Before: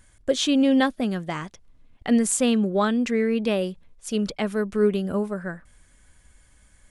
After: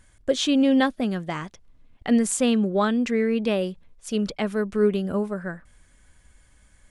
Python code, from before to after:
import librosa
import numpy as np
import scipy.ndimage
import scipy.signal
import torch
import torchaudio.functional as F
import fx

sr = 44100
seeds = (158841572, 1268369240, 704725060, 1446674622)

y = fx.high_shelf(x, sr, hz=9000.0, db=-5.5)